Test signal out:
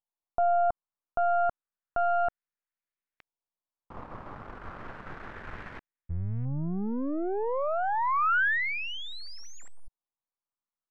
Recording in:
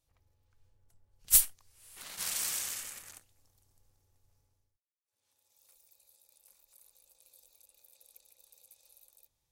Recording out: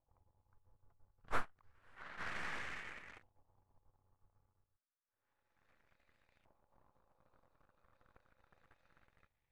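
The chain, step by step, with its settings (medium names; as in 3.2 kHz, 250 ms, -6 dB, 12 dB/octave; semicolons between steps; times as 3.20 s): partial rectifier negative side -12 dB; LFO low-pass saw up 0.31 Hz 880–2200 Hz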